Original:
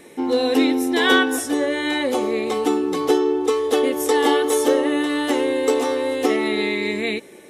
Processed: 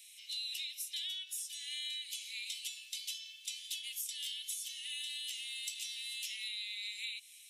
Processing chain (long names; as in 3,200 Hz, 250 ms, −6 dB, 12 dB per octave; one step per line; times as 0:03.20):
Butterworth high-pass 2,600 Hz 48 dB per octave
downward compressor 16 to 1, threshold −36 dBFS, peak gain reduction 17 dB
level −1.5 dB